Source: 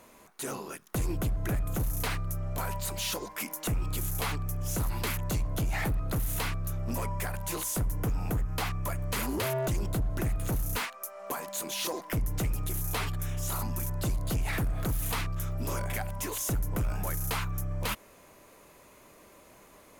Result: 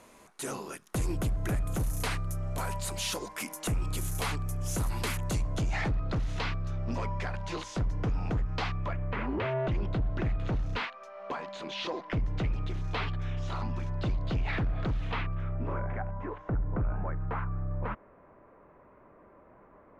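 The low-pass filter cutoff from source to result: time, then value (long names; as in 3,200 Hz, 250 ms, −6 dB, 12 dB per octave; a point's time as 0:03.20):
low-pass filter 24 dB per octave
0:05.27 11,000 Hz
0:06.00 5,000 Hz
0:08.69 5,000 Hz
0:09.15 2,300 Hz
0:10.03 4,000 Hz
0:14.90 4,000 Hz
0:15.93 1,600 Hz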